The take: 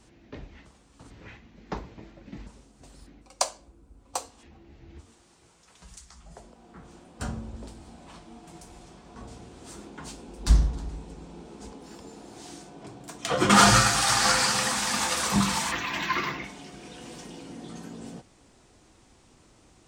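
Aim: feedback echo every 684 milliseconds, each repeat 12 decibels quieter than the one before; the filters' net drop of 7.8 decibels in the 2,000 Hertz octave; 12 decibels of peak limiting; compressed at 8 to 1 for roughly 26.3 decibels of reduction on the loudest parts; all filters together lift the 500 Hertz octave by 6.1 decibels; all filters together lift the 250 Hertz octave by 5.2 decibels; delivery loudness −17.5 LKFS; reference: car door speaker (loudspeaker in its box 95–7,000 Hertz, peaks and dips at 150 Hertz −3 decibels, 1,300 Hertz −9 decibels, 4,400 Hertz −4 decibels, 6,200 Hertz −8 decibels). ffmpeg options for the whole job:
ffmpeg -i in.wav -af "equalizer=frequency=250:width_type=o:gain=6.5,equalizer=frequency=500:width_type=o:gain=6.5,equalizer=frequency=2000:width_type=o:gain=-8,acompressor=threshold=-40dB:ratio=8,alimiter=level_in=10.5dB:limit=-24dB:level=0:latency=1,volume=-10.5dB,highpass=95,equalizer=frequency=150:width_type=q:width=4:gain=-3,equalizer=frequency=1300:width_type=q:width=4:gain=-9,equalizer=frequency=4400:width_type=q:width=4:gain=-4,equalizer=frequency=6200:width_type=q:width=4:gain=-8,lowpass=frequency=7000:width=0.5412,lowpass=frequency=7000:width=1.3066,aecho=1:1:684|1368|2052:0.251|0.0628|0.0157,volume=29.5dB" out.wav

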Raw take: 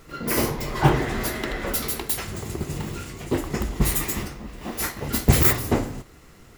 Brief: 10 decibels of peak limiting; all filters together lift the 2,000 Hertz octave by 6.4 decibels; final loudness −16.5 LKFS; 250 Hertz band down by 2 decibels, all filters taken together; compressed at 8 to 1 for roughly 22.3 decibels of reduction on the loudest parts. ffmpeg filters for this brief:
ffmpeg -i in.wav -af "equalizer=frequency=250:width_type=o:gain=-3,equalizer=frequency=2000:width_type=o:gain=7.5,acompressor=threshold=-34dB:ratio=8,volume=24dB,alimiter=limit=-7dB:level=0:latency=1" out.wav

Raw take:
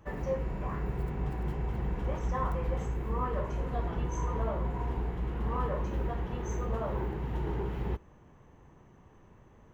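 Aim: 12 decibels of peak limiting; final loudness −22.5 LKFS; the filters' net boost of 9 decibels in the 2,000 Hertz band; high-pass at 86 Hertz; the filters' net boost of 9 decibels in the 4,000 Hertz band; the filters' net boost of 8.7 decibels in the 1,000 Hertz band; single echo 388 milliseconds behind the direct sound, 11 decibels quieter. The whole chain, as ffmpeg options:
ffmpeg -i in.wav -af "highpass=86,equalizer=frequency=1000:width_type=o:gain=8,equalizer=frequency=2000:width_type=o:gain=6.5,equalizer=frequency=4000:width_type=o:gain=9,alimiter=level_in=0.5dB:limit=-24dB:level=0:latency=1,volume=-0.5dB,aecho=1:1:388:0.282,volume=11.5dB" out.wav

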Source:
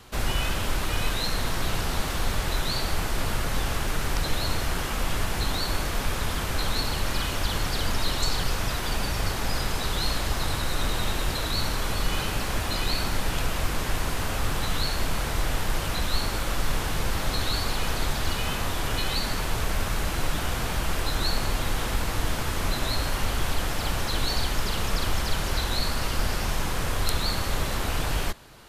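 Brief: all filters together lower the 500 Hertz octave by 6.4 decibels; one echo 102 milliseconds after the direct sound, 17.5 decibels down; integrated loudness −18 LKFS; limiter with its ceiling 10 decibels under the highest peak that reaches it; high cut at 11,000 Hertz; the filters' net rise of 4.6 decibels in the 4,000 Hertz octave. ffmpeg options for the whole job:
ffmpeg -i in.wav -af "lowpass=11000,equalizer=frequency=500:width_type=o:gain=-8.5,equalizer=frequency=4000:width_type=o:gain=5.5,alimiter=limit=-16dB:level=0:latency=1,aecho=1:1:102:0.133,volume=9.5dB" out.wav

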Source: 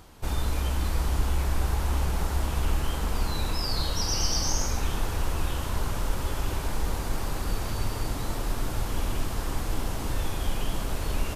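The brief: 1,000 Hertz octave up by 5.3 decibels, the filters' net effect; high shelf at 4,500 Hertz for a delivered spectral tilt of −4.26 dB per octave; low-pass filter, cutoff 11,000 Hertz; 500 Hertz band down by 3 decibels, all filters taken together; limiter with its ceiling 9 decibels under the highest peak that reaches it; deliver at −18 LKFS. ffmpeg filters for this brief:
ffmpeg -i in.wav -af "lowpass=11000,equalizer=frequency=500:width_type=o:gain=-6.5,equalizer=frequency=1000:width_type=o:gain=8,highshelf=frequency=4500:gain=4,volume=14dB,alimiter=limit=-6.5dB:level=0:latency=1" out.wav

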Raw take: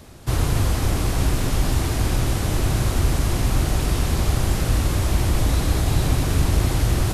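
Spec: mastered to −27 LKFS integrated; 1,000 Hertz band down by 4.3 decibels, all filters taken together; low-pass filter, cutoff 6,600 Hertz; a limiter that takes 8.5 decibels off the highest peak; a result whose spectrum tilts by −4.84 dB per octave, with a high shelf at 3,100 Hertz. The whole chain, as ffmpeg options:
ffmpeg -i in.wav -af "lowpass=6600,equalizer=frequency=1000:width_type=o:gain=-6.5,highshelf=frequency=3100:gain=5.5,volume=-1dB,alimiter=limit=-17dB:level=0:latency=1" out.wav

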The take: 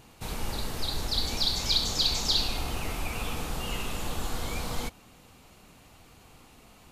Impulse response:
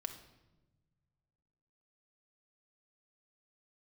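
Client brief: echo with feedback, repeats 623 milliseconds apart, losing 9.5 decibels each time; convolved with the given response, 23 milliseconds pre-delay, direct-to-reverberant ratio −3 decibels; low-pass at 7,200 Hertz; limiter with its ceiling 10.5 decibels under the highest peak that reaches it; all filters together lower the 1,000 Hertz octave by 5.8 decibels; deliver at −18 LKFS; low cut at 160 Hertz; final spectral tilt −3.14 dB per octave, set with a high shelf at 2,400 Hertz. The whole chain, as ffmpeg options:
-filter_complex "[0:a]highpass=160,lowpass=7200,equalizer=frequency=1000:width_type=o:gain=-7,highshelf=frequency=2400:gain=-4,alimiter=level_in=3dB:limit=-24dB:level=0:latency=1,volume=-3dB,aecho=1:1:623|1246|1869|2492:0.335|0.111|0.0365|0.012,asplit=2[link_01][link_02];[1:a]atrim=start_sample=2205,adelay=23[link_03];[link_02][link_03]afir=irnorm=-1:irlink=0,volume=4.5dB[link_04];[link_01][link_04]amix=inputs=2:normalize=0,volume=14dB"

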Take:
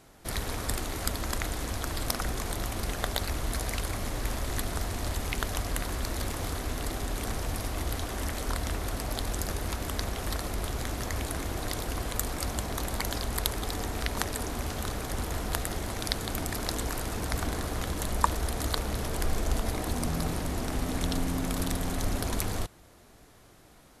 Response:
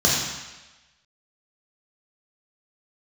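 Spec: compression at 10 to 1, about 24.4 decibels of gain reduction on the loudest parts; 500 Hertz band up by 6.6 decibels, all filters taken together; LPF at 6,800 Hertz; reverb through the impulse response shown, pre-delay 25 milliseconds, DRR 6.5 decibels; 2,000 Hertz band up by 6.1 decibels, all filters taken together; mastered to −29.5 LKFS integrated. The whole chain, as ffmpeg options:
-filter_complex "[0:a]lowpass=6800,equalizer=frequency=500:width_type=o:gain=8,equalizer=frequency=2000:width_type=o:gain=7,acompressor=threshold=-42dB:ratio=10,asplit=2[link_01][link_02];[1:a]atrim=start_sample=2205,adelay=25[link_03];[link_02][link_03]afir=irnorm=-1:irlink=0,volume=-24.5dB[link_04];[link_01][link_04]amix=inputs=2:normalize=0,volume=15.5dB"

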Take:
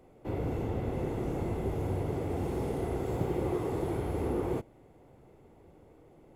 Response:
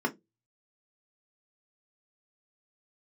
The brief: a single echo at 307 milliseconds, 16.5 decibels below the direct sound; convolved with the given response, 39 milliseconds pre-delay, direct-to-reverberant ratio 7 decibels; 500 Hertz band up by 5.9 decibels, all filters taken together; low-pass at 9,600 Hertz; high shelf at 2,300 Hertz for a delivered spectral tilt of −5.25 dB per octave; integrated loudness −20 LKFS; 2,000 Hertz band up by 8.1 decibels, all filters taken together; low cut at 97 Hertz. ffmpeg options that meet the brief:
-filter_complex "[0:a]highpass=97,lowpass=9600,equalizer=frequency=500:width_type=o:gain=7,equalizer=frequency=2000:width_type=o:gain=5,highshelf=frequency=2300:gain=8.5,aecho=1:1:307:0.15,asplit=2[link_01][link_02];[1:a]atrim=start_sample=2205,adelay=39[link_03];[link_02][link_03]afir=irnorm=-1:irlink=0,volume=-15.5dB[link_04];[link_01][link_04]amix=inputs=2:normalize=0,volume=8dB"

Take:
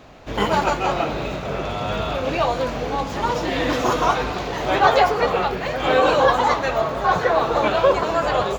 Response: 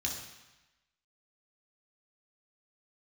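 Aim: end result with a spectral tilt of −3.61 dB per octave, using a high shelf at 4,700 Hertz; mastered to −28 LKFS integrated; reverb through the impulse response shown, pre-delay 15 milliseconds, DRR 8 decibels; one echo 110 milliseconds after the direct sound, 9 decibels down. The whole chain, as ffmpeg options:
-filter_complex "[0:a]highshelf=frequency=4700:gain=-6.5,aecho=1:1:110:0.355,asplit=2[link_01][link_02];[1:a]atrim=start_sample=2205,adelay=15[link_03];[link_02][link_03]afir=irnorm=-1:irlink=0,volume=-11dB[link_04];[link_01][link_04]amix=inputs=2:normalize=0,volume=-8.5dB"

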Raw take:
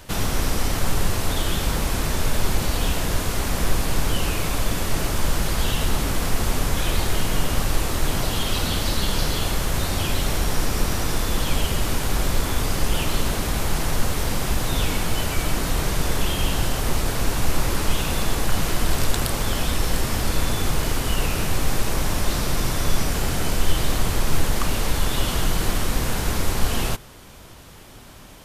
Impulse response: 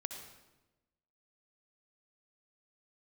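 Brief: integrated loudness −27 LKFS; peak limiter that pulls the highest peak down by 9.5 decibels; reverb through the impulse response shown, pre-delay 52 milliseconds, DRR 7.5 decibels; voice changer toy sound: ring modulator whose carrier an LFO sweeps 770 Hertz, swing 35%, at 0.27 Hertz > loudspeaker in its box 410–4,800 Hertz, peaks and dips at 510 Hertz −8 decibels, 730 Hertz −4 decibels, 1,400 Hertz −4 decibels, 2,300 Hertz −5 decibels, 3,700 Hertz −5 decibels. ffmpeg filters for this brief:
-filter_complex "[0:a]alimiter=limit=-15dB:level=0:latency=1,asplit=2[link_01][link_02];[1:a]atrim=start_sample=2205,adelay=52[link_03];[link_02][link_03]afir=irnorm=-1:irlink=0,volume=-6.5dB[link_04];[link_01][link_04]amix=inputs=2:normalize=0,aeval=exprs='val(0)*sin(2*PI*770*n/s+770*0.35/0.27*sin(2*PI*0.27*n/s))':channel_layout=same,highpass=410,equalizer=frequency=510:width_type=q:width=4:gain=-8,equalizer=frequency=730:width_type=q:width=4:gain=-4,equalizer=frequency=1400:width_type=q:width=4:gain=-4,equalizer=frequency=2300:width_type=q:width=4:gain=-5,equalizer=frequency=3700:width_type=q:width=4:gain=-5,lowpass=frequency=4800:width=0.5412,lowpass=frequency=4800:width=1.3066,volume=2dB"

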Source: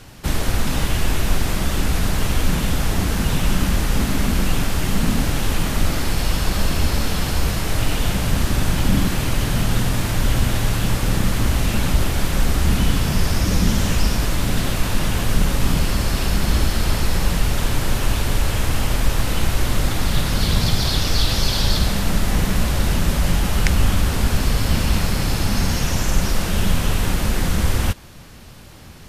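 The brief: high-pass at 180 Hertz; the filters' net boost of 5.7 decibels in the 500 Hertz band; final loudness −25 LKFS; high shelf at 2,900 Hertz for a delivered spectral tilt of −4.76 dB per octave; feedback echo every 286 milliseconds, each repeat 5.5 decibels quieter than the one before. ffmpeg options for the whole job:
ffmpeg -i in.wav -af "highpass=180,equalizer=frequency=500:width_type=o:gain=7.5,highshelf=frequency=2900:gain=-7,aecho=1:1:286|572|858|1144|1430|1716|2002:0.531|0.281|0.149|0.079|0.0419|0.0222|0.0118,volume=-2dB" out.wav

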